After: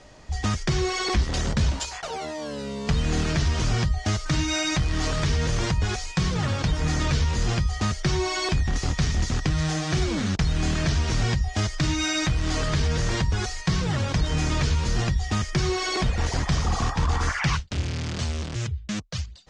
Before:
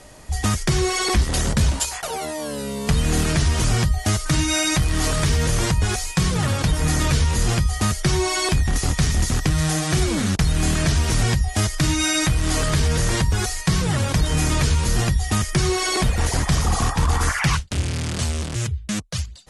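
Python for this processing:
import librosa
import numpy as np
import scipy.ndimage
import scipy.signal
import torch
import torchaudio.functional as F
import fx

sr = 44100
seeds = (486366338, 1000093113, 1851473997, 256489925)

y = scipy.signal.sosfilt(scipy.signal.butter(4, 6400.0, 'lowpass', fs=sr, output='sos'), x)
y = y * 10.0 ** (-4.0 / 20.0)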